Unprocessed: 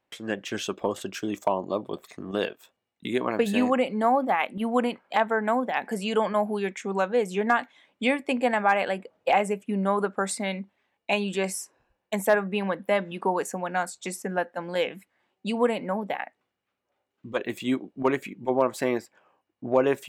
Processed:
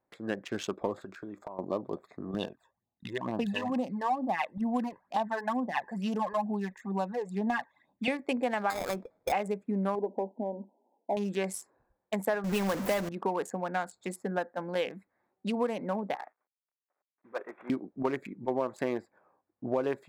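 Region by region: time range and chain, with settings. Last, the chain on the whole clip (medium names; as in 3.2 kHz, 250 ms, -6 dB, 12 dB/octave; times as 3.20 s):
0.97–1.59 s: peaking EQ 1.4 kHz +6.5 dB 0.76 oct + compression, threshold -36 dBFS
2.34–8.08 s: comb 1.1 ms, depth 58% + phase shifter stages 12, 2.2 Hz, lowest notch 220–2100 Hz
8.70–9.32 s: compression 2.5:1, threshold -24 dBFS + sample-rate reducer 2.9 kHz
9.95–11.17 s: companding laws mixed up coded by mu + brick-wall FIR band-pass 200–1000 Hz
12.44–13.09 s: jump at every zero crossing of -26 dBFS + companded quantiser 4-bit
16.15–17.70 s: CVSD coder 16 kbps + high-pass 590 Hz + distance through air 190 m
whole clip: local Wiener filter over 15 samples; compression 4:1, threshold -24 dBFS; trim -2 dB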